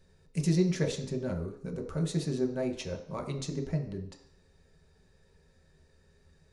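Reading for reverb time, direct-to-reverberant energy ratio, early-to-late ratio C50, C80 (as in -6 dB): 0.60 s, 1.0 dB, 9.0 dB, 12.0 dB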